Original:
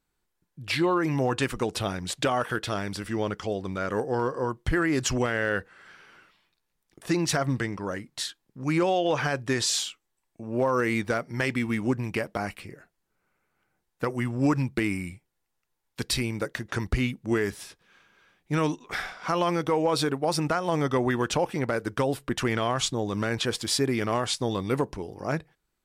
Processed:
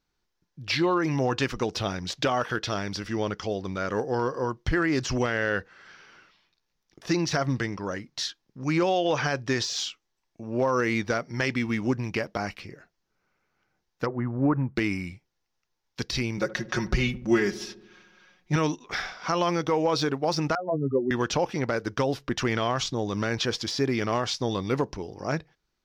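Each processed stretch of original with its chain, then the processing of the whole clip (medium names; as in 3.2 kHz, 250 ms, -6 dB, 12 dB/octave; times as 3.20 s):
14.06–14.76 s: CVSD coder 64 kbps + low-pass 1.5 kHz 24 dB/octave
16.37–18.56 s: comb 5.5 ms, depth 89% + filtered feedback delay 73 ms, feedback 68%, low-pass 950 Hz, level -15 dB
20.55–21.11 s: spectral contrast enhancement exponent 3.9 + doubling 15 ms -11 dB + three bands expanded up and down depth 70%
whole clip: de-esser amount 60%; resonant high shelf 7.1 kHz -8 dB, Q 3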